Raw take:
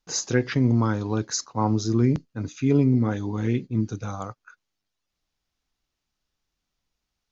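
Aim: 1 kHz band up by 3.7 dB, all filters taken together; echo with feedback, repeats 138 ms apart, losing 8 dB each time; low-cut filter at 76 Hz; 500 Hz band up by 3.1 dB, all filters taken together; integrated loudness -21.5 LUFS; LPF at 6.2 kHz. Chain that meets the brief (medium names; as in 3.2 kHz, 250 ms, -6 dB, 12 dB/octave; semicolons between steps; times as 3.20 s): high-pass 76 Hz; low-pass 6.2 kHz; peaking EQ 500 Hz +3.5 dB; peaking EQ 1 kHz +3.5 dB; feedback delay 138 ms, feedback 40%, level -8 dB; trim +1.5 dB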